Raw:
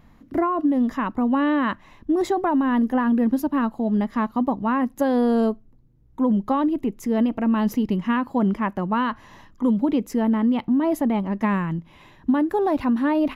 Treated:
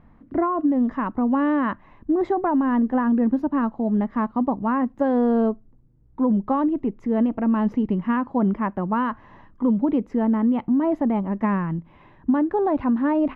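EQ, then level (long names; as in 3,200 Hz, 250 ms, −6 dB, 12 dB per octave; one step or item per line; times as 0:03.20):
low-pass filter 1,700 Hz 12 dB per octave
0.0 dB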